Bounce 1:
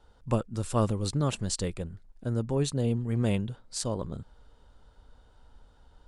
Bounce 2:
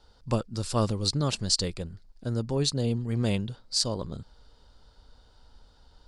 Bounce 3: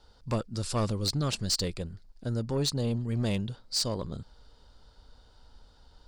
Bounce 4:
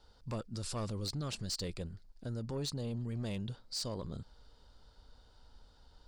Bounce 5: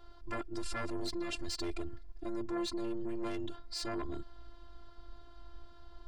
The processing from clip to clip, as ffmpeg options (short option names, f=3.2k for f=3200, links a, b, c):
-af "equalizer=f=4.7k:w=1.9:g=13.5"
-af "asoftclip=type=tanh:threshold=-21dB"
-af "alimiter=level_in=3.5dB:limit=-24dB:level=0:latency=1:release=39,volume=-3.5dB,volume=-4dB"
-filter_complex "[0:a]afftfilt=real='hypot(re,im)*cos(PI*b)':imag='0':win_size=512:overlap=0.75,acrossover=split=2800[a][b];[a]aeval=exprs='0.0335*sin(PI/2*3.16*val(0)/0.0335)':c=same[c];[c][b]amix=inputs=2:normalize=0,volume=-1dB"